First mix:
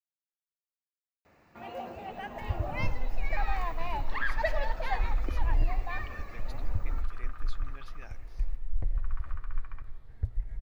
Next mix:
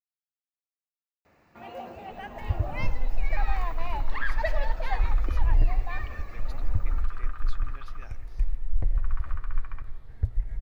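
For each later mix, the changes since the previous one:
second sound +5.0 dB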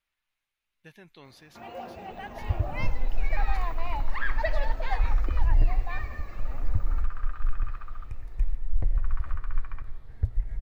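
speech: entry -2.95 s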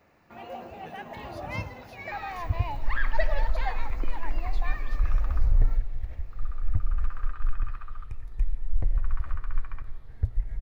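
first sound: entry -1.25 s; master: add notch 7800 Hz, Q 20

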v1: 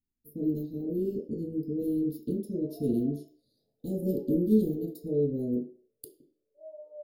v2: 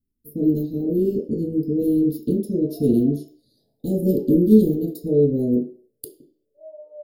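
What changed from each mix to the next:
speech +10.0 dB; background +5.0 dB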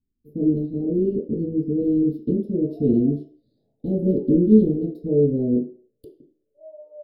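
master: add air absorption 470 m

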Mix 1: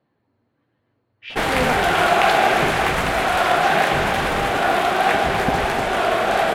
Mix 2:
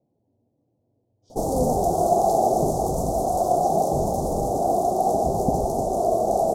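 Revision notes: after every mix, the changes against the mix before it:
master: add elliptic band-stop 710–6100 Hz, stop band 60 dB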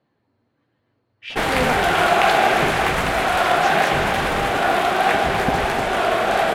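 speech: remove air absorption 110 m; master: remove elliptic band-stop 710–6100 Hz, stop band 60 dB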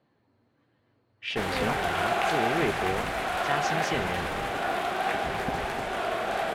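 background -10.5 dB

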